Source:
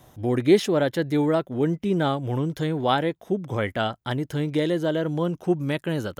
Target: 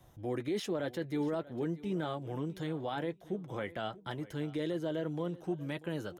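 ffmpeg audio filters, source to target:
-filter_complex "[0:a]acrossover=split=150[a][b];[a]acompressor=threshold=-45dB:ratio=6[c];[b]flanger=delay=5.4:depth=1.2:regen=-49:speed=1.9:shape=triangular[d];[c][d]amix=inputs=2:normalize=0,bass=f=250:g=-3,treble=f=4k:g=-1,alimiter=limit=-20.5dB:level=0:latency=1:release=13,lowshelf=f=110:g=7.5,asplit=2[e][f];[f]aecho=0:1:638|1276:0.112|0.0202[g];[e][g]amix=inputs=2:normalize=0,volume=-6.5dB"

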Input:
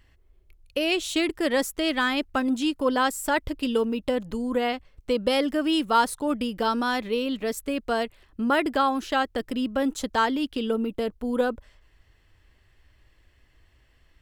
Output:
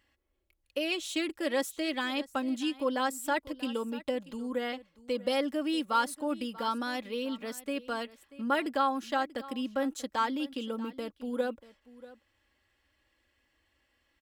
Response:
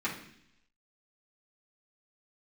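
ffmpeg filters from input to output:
-filter_complex "[0:a]highpass=f=260:p=1,aecho=1:1:3.6:0.5,asplit=2[a][b];[b]aecho=0:1:637:0.119[c];[a][c]amix=inputs=2:normalize=0,volume=-7.5dB"

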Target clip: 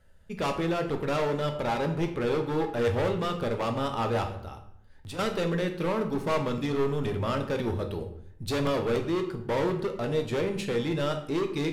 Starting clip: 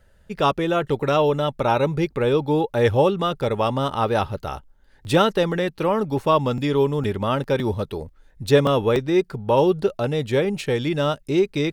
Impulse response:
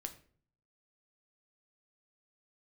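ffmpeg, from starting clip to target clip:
-filter_complex "[0:a]asoftclip=type=hard:threshold=-19.5dB,asettb=1/sr,asplit=3[a][b][c];[a]atrim=end=4.284[d];[b]atrim=start=4.28:end=5.19,asetpts=PTS-STARTPTS,afade=t=in:d=0.004:c=qsin,afade=t=out:st=0.906:d=0.004:c=qsin,acompressor=threshold=-34dB:ratio=6[e];[c]atrim=start=5.186[f];[d][e]acrossfade=d=0.004:c1=hsin:c2=qsin[g];[g][f]acrossfade=d=0.004:c1=qsin:c2=hsin[h];[1:a]atrim=start_sample=2205,asetrate=27342,aresample=44100[i];[h][i]afir=irnorm=-1:irlink=0,volume=-4.5dB"

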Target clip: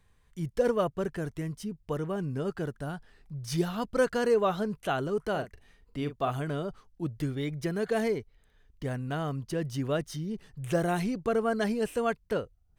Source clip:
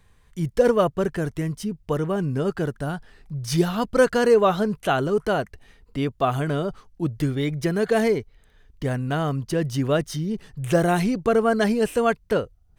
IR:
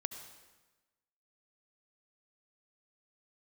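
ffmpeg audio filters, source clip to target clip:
-filter_complex "[0:a]asettb=1/sr,asplit=3[a][b][c];[a]atrim=end=5.304[d];[b]atrim=start=5.3:end=6.32,asetpts=PTS-STARTPTS,afade=t=in:d=0.004:c=qsin,afade=t=out:st=1.016:d=0.004:c=qsin,asplit=2[e][f];[f]adelay=41,volume=-10.5dB[g];[e][g]amix=inputs=2:normalize=0,atrim=end_sample=44982[h];[c]atrim=start=6.316[i];[d][h]acrossfade=d=0.004:c1=hsin:c2=qsin[j];[j][i]acrossfade=d=0.004:c1=qsin:c2=hsin,volume=-8dB"

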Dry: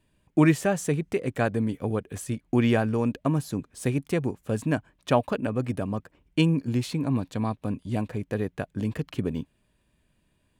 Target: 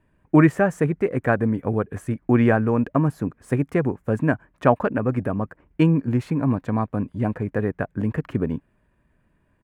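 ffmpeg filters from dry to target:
-af "highshelf=f=2.5k:t=q:w=1.5:g=-13,atempo=1.1,volume=4.5dB"

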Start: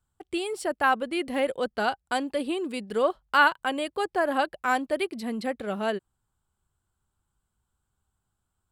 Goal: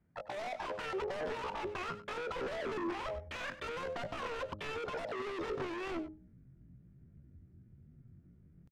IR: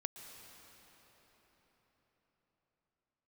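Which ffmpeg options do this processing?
-filter_complex "[0:a]highpass=f=63:p=1,bandreject=f=60:t=h:w=6,bandreject=f=120:t=h:w=6,bandreject=f=180:t=h:w=6,bandreject=f=240:t=h:w=6,bandreject=f=300:t=h:w=6,bandreject=f=360:t=h:w=6,asplit=2[a][b];[b]asetrate=58866,aresample=44100,atempo=0.749154,volume=-11dB[c];[a][c]amix=inputs=2:normalize=0,asubboost=boost=8.5:cutoff=160,acompressor=threshold=-28dB:ratio=2.5,aresample=8000,asoftclip=type=hard:threshold=-33.5dB,aresample=44100,bandreject=f=1.5k:w=7.6,aeval=exprs='0.0119*(abs(mod(val(0)/0.0119+3,4)-2)-1)':c=same,adynamicsmooth=sensitivity=4:basefreq=820,asetrate=76340,aresample=44100,atempo=0.577676,aecho=1:1:97:0.188,volume=8.5dB"

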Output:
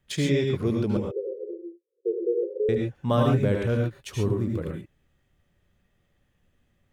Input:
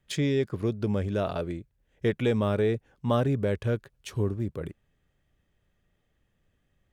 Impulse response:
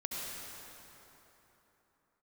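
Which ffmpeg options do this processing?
-filter_complex "[0:a]asettb=1/sr,asplit=3[a][b][c];[a]atrim=end=0.974[d];[b]atrim=start=0.97:end=2.69,asetpts=PTS-STARTPTS,afade=t=in:d=0.004:c=qsin,afade=t=out:st=1.716:d=0.004:c=qsin,asuperpass=centerf=430:order=20:qfactor=2.2[e];[c]atrim=start=2.686[f];[d][e]acrossfade=d=0.004:c1=hsin:c2=qsin[g];[g][f]acrossfade=d=0.004:c1=qsin:c2=hsin[h];[1:a]atrim=start_sample=2205,atrim=end_sample=6174,asetrate=42336,aresample=44100[i];[h][i]afir=irnorm=-1:irlink=0,volume=4dB"

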